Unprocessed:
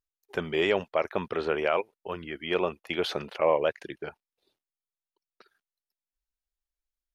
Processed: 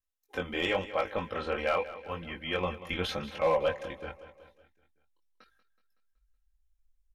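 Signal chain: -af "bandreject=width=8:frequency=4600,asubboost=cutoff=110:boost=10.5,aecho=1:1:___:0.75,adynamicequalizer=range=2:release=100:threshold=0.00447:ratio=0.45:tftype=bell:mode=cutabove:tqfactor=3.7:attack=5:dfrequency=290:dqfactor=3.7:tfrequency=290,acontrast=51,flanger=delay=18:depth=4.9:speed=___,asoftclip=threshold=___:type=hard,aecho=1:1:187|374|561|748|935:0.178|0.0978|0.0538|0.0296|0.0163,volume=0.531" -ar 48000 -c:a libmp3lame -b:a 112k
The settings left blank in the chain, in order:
3.8, 0.88, 0.211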